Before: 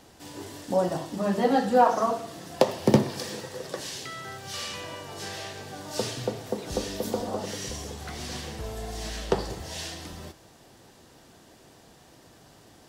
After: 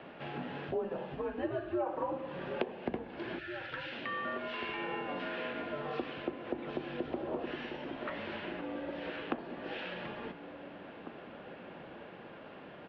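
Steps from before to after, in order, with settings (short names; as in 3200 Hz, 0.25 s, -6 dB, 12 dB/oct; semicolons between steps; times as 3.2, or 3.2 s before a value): spectral gain 3.38–3.92, 320–1400 Hz -26 dB; compressor 6:1, threshold -40 dBFS, peak gain reduction 24.5 dB; mistuned SSB -150 Hz 360–3000 Hz; outdoor echo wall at 300 m, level -10 dB; gain +7.5 dB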